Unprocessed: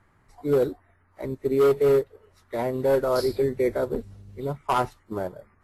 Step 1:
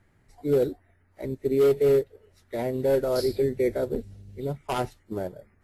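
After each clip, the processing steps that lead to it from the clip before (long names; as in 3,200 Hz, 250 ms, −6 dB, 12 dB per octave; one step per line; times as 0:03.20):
parametric band 1,100 Hz −11.5 dB 0.79 octaves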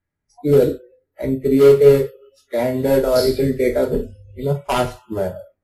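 coupled-rooms reverb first 0.33 s, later 1.9 s, from −28 dB, DRR 2 dB
noise reduction from a noise print of the clip's start 27 dB
level +8 dB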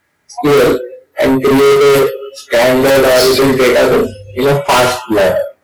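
mid-hump overdrive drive 34 dB, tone 8,000 Hz, clips at −1 dBFS
level −1 dB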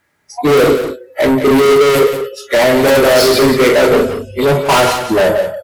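single-tap delay 177 ms −9.5 dB
level −1 dB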